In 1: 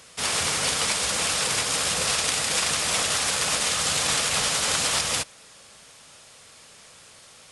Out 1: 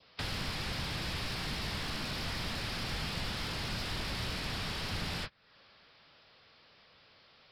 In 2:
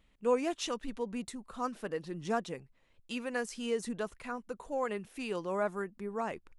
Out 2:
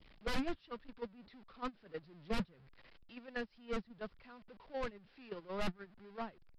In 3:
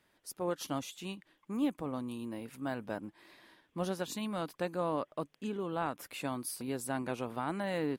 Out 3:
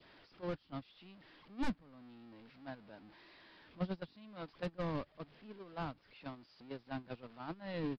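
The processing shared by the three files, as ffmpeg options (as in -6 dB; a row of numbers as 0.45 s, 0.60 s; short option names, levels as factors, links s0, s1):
-filter_complex "[0:a]aeval=exprs='val(0)+0.5*0.0224*sgn(val(0))':c=same,agate=range=0.0112:threshold=0.0447:ratio=16:detection=peak,adynamicequalizer=threshold=0.00562:dfrequency=1600:dqfactor=1.7:tfrequency=1600:tqfactor=1.7:attack=5:release=100:ratio=0.375:range=3:mode=boostabove:tftype=bell,aeval=exprs='0.376*(cos(1*acos(clip(val(0)/0.376,-1,1)))-cos(1*PI/2))+0.0531*(cos(3*acos(clip(val(0)/0.376,-1,1)))-cos(3*PI/2))+0.075*(cos(5*acos(clip(val(0)/0.376,-1,1)))-cos(5*PI/2))+0.015*(cos(8*acos(clip(val(0)/0.376,-1,1)))-cos(8*PI/2))':c=same,aresample=11025,aeval=exprs='0.0335*(abs(mod(val(0)/0.0335+3,4)-2)-1)':c=same,aresample=44100,aeval=exprs='0.0668*(cos(1*acos(clip(val(0)/0.0668,-1,1)))-cos(1*PI/2))+0.0188*(cos(5*acos(clip(val(0)/0.0668,-1,1)))-cos(5*PI/2))':c=same,acrossover=split=180[s0][s1];[s1]acompressor=threshold=0.00355:ratio=3[s2];[s0][s2]amix=inputs=2:normalize=0,volume=1.88"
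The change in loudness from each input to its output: -14.0 LU, -8.0 LU, -7.5 LU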